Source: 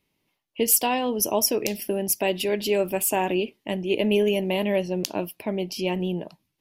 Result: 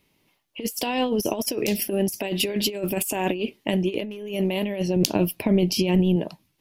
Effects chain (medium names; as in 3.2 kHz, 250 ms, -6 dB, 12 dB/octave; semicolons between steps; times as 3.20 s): dynamic bell 930 Hz, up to -5 dB, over -38 dBFS, Q 0.79; in parallel at -3.5 dB: wavefolder -14.5 dBFS; on the sum: compressor with a negative ratio -24 dBFS, ratio -0.5; 4.96–6.16 s: bass shelf 190 Hz +9.5 dB